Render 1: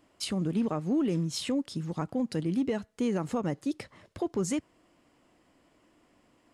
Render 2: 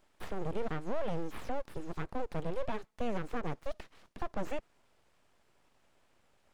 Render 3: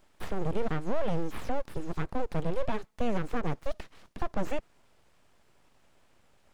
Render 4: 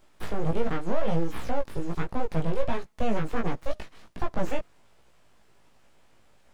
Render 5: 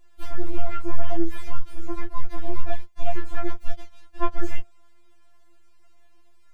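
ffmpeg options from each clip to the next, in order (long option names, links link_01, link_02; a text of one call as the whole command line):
ffmpeg -i in.wav -filter_complex "[0:a]aeval=exprs='abs(val(0))':channel_layout=same,acrossover=split=3500[link_01][link_02];[link_02]acompressor=threshold=-58dB:ratio=4:attack=1:release=60[link_03];[link_01][link_03]amix=inputs=2:normalize=0,volume=-3dB" out.wav
ffmpeg -i in.wav -af "bass=frequency=250:gain=3,treble=frequency=4000:gain=1,volume=4dB" out.wav
ffmpeg -i in.wav -af "flanger=delay=16.5:depth=2.6:speed=1.4,volume=6dB" out.wav
ffmpeg -i in.wav -af "afftfilt=real='re*4*eq(mod(b,16),0)':imag='im*4*eq(mod(b,16),0)':win_size=2048:overlap=0.75" out.wav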